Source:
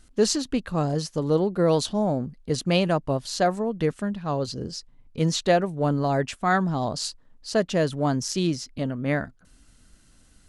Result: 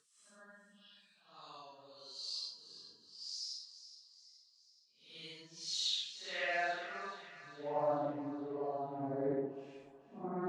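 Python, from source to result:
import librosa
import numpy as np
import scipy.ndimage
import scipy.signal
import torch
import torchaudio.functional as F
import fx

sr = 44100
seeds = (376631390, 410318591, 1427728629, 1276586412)

p1 = fx.dereverb_blind(x, sr, rt60_s=1.2)
p2 = fx.paulstretch(p1, sr, seeds[0], factor=4.1, window_s=0.1, from_s=3.93)
p3 = fx.filter_sweep_bandpass(p2, sr, from_hz=4300.0, to_hz=320.0, start_s=5.6, end_s=8.9, q=2.2)
p4 = p3 + fx.echo_split(p3, sr, split_hz=870.0, low_ms=186, high_ms=422, feedback_pct=52, wet_db=-12.5, dry=0)
p5 = fx.doppler_dist(p4, sr, depth_ms=0.17)
y = F.gain(torch.from_numpy(p5), -5.5).numpy()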